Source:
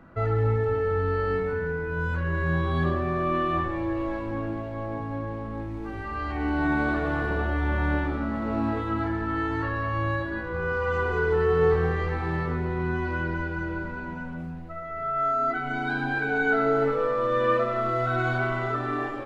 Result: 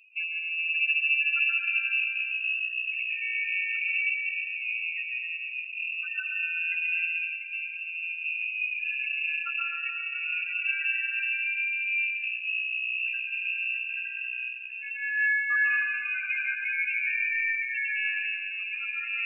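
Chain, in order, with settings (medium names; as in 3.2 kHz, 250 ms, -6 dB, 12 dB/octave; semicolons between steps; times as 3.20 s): compression 6:1, threshold -26 dBFS, peak gain reduction 9 dB; loudest bins only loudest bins 4; formant-preserving pitch shift -5 st; reverberation RT60 2.4 s, pre-delay 110 ms, DRR -0.5 dB; frequency inversion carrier 2.7 kHz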